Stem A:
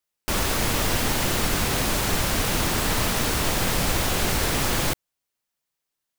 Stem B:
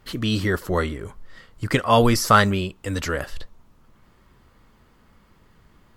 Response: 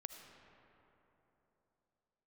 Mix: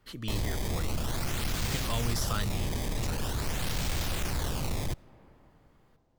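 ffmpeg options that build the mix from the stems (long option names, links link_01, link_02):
-filter_complex "[0:a]highshelf=frequency=6000:gain=-10,acrusher=samples=18:mix=1:aa=0.000001:lfo=1:lforange=28.8:lforate=0.45,asoftclip=type=tanh:threshold=-25dB,volume=0dB,asplit=2[link_01][link_02];[link_02]volume=-14dB[link_03];[1:a]volume=-11dB,asplit=2[link_04][link_05];[link_05]volume=-14dB[link_06];[2:a]atrim=start_sample=2205[link_07];[link_03][link_06]amix=inputs=2:normalize=0[link_08];[link_08][link_07]afir=irnorm=-1:irlink=0[link_09];[link_01][link_04][link_09]amix=inputs=3:normalize=0,acrossover=split=150|3000[link_10][link_11][link_12];[link_11]acompressor=threshold=-44dB:ratio=2[link_13];[link_10][link_13][link_12]amix=inputs=3:normalize=0"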